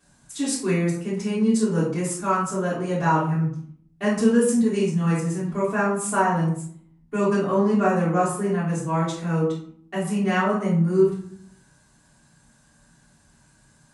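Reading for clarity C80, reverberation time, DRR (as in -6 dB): 8.0 dB, 0.55 s, -15.0 dB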